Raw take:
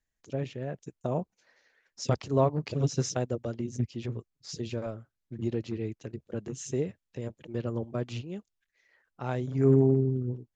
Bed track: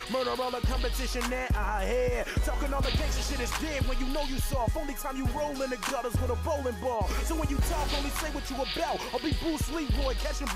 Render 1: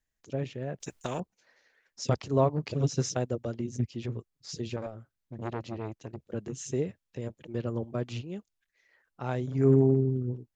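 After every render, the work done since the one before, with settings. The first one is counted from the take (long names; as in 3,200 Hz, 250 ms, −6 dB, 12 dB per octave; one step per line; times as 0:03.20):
0:00.80–0:01.20: every bin compressed towards the loudest bin 2 to 1
0:04.76–0:06.27: saturating transformer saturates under 840 Hz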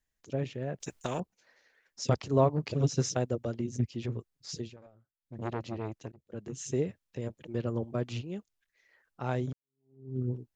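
0:04.56–0:05.39: duck −17.5 dB, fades 0.18 s
0:06.12–0:06.67: fade in, from −20.5 dB
0:09.53–0:10.19: fade in exponential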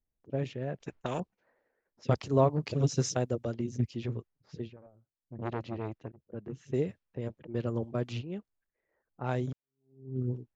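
low-pass that shuts in the quiet parts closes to 670 Hz, open at −27.5 dBFS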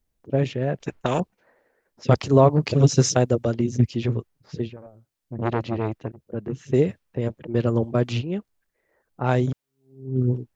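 level +11 dB
brickwall limiter −3 dBFS, peak gain reduction 3 dB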